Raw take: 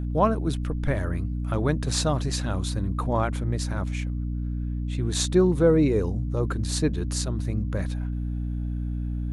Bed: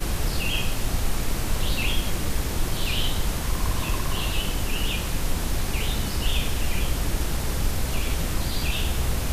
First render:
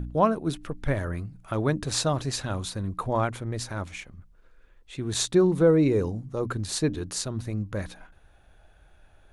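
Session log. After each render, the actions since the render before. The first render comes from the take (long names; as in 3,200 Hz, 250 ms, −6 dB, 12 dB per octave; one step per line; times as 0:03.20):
hum removal 60 Hz, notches 5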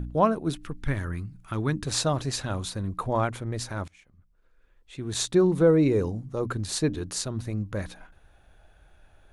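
0:00.55–0:01.87: parametric band 600 Hz −12 dB 0.81 octaves
0:03.88–0:05.49: fade in, from −22 dB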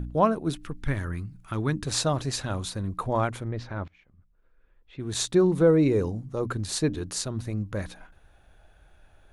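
0:03.48–0:05.00: high-frequency loss of the air 260 metres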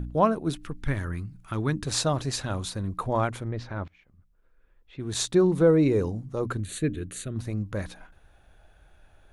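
0:06.60–0:07.36: phaser with its sweep stopped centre 2,200 Hz, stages 4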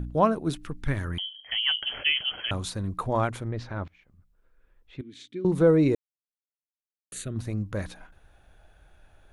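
0:01.18–0:02.51: voice inversion scrambler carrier 3,200 Hz
0:05.01–0:05.45: formant filter i
0:05.95–0:07.12: silence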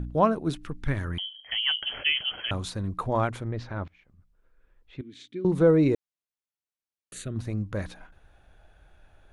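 high-shelf EQ 9,000 Hz −8.5 dB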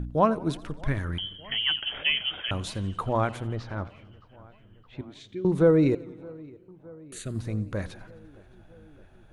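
feedback echo with a low-pass in the loop 617 ms, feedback 73%, low-pass 2,700 Hz, level −23.5 dB
feedback echo with a swinging delay time 88 ms, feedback 66%, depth 134 cents, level −21 dB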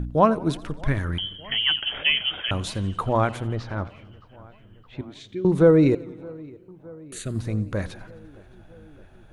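level +4 dB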